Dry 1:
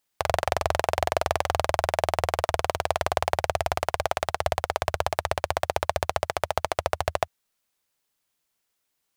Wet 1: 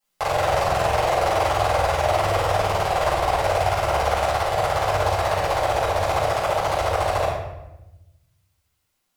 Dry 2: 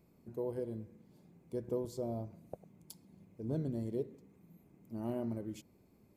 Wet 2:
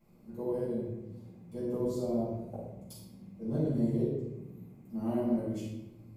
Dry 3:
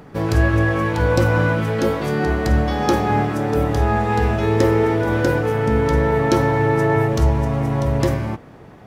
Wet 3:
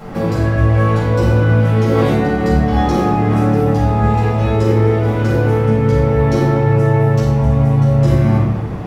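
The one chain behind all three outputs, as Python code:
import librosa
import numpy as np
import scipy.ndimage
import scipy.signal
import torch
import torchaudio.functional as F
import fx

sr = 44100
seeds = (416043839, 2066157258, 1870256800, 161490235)

p1 = fx.dynamic_eq(x, sr, hz=160.0, q=0.86, threshold_db=-31.0, ratio=4.0, max_db=5)
p2 = fx.over_compress(p1, sr, threshold_db=-24.0, ratio=-0.5)
p3 = p1 + (p2 * 10.0 ** (2.5 / 20.0))
p4 = fx.room_shoebox(p3, sr, seeds[0], volume_m3=380.0, walls='mixed', distance_m=7.0)
y = p4 * 10.0 ** (-17.0 / 20.0)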